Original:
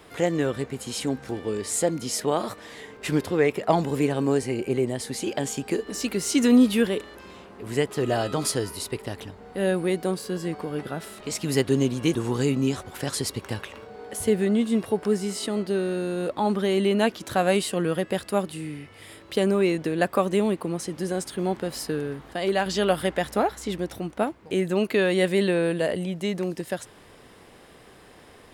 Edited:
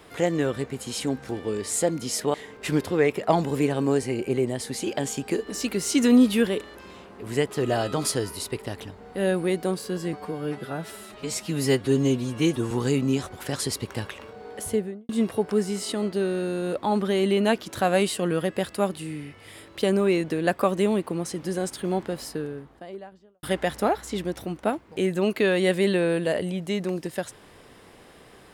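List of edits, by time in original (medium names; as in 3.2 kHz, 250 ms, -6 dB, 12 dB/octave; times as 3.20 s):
2.34–2.74 s: delete
10.53–12.25 s: stretch 1.5×
14.12–14.63 s: studio fade out
21.38–22.97 s: studio fade out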